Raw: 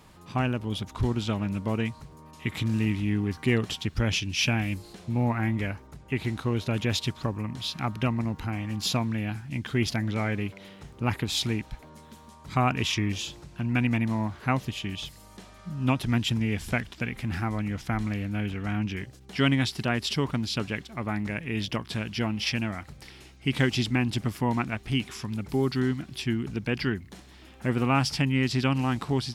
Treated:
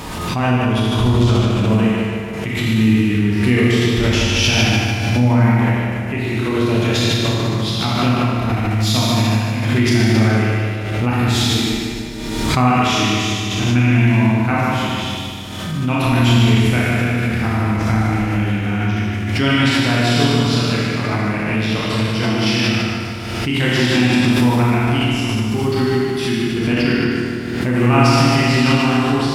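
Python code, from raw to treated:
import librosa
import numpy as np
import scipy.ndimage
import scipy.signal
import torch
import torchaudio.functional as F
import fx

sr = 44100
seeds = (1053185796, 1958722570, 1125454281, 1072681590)

y = fx.echo_feedback(x, sr, ms=150, feedback_pct=49, wet_db=-5)
y = fx.rev_schroeder(y, sr, rt60_s=1.7, comb_ms=25, drr_db=-6.0)
y = fx.pre_swell(y, sr, db_per_s=33.0)
y = y * 10.0 ** (2.5 / 20.0)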